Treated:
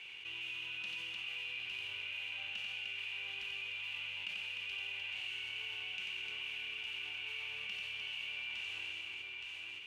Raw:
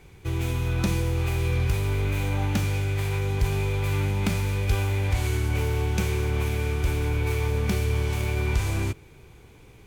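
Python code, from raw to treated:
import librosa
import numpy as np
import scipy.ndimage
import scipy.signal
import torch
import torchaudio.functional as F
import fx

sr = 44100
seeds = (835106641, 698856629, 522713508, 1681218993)

p1 = fx.bandpass_q(x, sr, hz=2800.0, q=18.0)
p2 = p1 + fx.echo_multitap(p1, sr, ms=(90, 302, 869), db=(-4.5, -8.0, -11.5), dry=0)
p3 = fx.env_flatten(p2, sr, amount_pct=70)
y = F.gain(torch.from_numpy(p3), 3.0).numpy()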